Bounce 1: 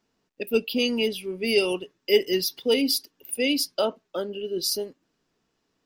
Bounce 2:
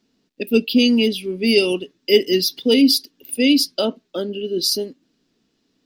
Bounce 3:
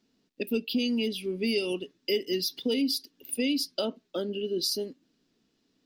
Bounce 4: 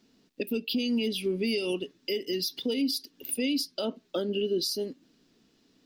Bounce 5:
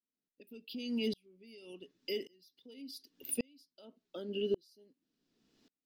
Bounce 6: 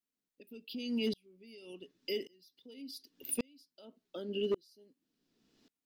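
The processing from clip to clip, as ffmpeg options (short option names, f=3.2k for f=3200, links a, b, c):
-af "equalizer=f=250:t=o:w=1:g=10,equalizer=f=1k:t=o:w=1:g=-5,equalizer=f=4k:t=o:w=1:g=7,volume=2.5dB"
-af "acompressor=threshold=-22dB:ratio=3,volume=-5dB"
-af "alimiter=level_in=3.5dB:limit=-24dB:level=0:latency=1:release=314,volume=-3.5dB,volume=7dB"
-af "aeval=exprs='val(0)*pow(10,-37*if(lt(mod(-0.88*n/s,1),2*abs(-0.88)/1000),1-mod(-0.88*n/s,1)/(2*abs(-0.88)/1000),(mod(-0.88*n/s,1)-2*abs(-0.88)/1000)/(1-2*abs(-0.88)/1000))/20)':c=same,volume=-2dB"
-af "asoftclip=type=hard:threshold=-26.5dB,volume=1dB"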